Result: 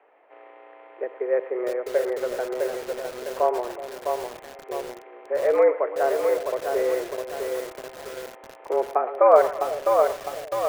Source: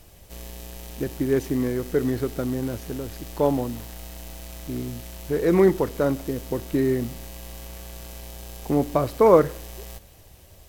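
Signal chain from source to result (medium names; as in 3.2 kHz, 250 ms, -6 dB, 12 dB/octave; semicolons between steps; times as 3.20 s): mistuned SSB +120 Hz 280–2100 Hz; two-band feedback delay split 650 Hz, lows 372 ms, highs 112 ms, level -13 dB; bit-crushed delay 656 ms, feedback 55%, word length 6-bit, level -4 dB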